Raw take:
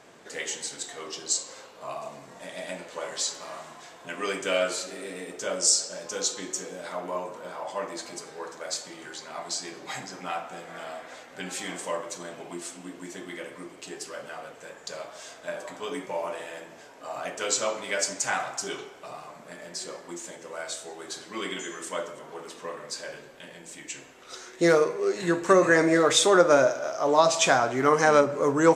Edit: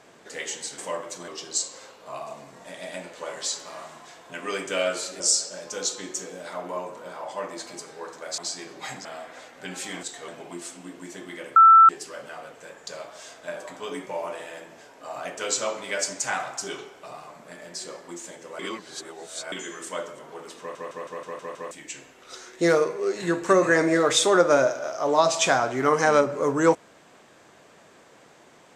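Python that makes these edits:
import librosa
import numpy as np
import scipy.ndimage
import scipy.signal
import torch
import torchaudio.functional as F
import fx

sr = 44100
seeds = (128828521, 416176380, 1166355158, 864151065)

y = fx.edit(x, sr, fx.swap(start_s=0.78, length_s=0.25, other_s=11.78, other_length_s=0.5),
    fx.cut(start_s=4.95, length_s=0.64),
    fx.cut(start_s=8.77, length_s=0.67),
    fx.cut(start_s=10.11, length_s=0.69),
    fx.bleep(start_s=13.56, length_s=0.33, hz=1330.0, db=-8.5),
    fx.reverse_span(start_s=20.59, length_s=0.93),
    fx.stutter_over(start_s=22.59, slice_s=0.16, count=7), tone=tone)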